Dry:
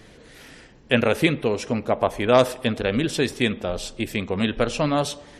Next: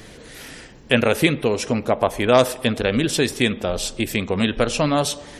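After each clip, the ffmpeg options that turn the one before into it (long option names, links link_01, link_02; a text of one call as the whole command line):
ffmpeg -i in.wav -filter_complex "[0:a]highshelf=frequency=6500:gain=7.5,asplit=2[link_01][link_02];[link_02]acompressor=threshold=-28dB:ratio=6,volume=-0.5dB[link_03];[link_01][link_03]amix=inputs=2:normalize=0" out.wav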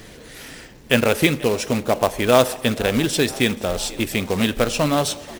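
ffmpeg -i in.wav -filter_complex "[0:a]asplit=6[link_01][link_02][link_03][link_04][link_05][link_06];[link_02]adelay=487,afreqshift=73,volume=-21dB[link_07];[link_03]adelay=974,afreqshift=146,volume=-25.2dB[link_08];[link_04]adelay=1461,afreqshift=219,volume=-29.3dB[link_09];[link_05]adelay=1948,afreqshift=292,volume=-33.5dB[link_10];[link_06]adelay=2435,afreqshift=365,volume=-37.6dB[link_11];[link_01][link_07][link_08][link_09][link_10][link_11]amix=inputs=6:normalize=0,acrusher=bits=3:mode=log:mix=0:aa=0.000001" out.wav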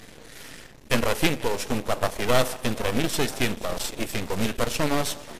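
ffmpeg -i in.wav -af "aeval=exprs='max(val(0),0)':channel_layout=same" -ar 32000 -c:a libmp3lame -b:a 80k out.mp3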